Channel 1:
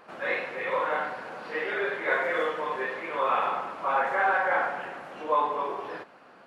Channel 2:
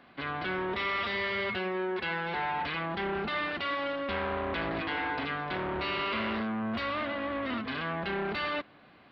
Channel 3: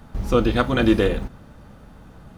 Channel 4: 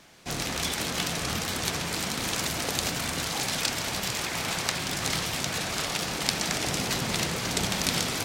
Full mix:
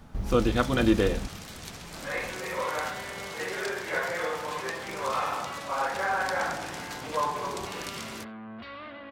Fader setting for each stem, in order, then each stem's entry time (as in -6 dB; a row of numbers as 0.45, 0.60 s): -4.0, -9.5, -5.0, -13.0 dB; 1.85, 1.85, 0.00, 0.00 s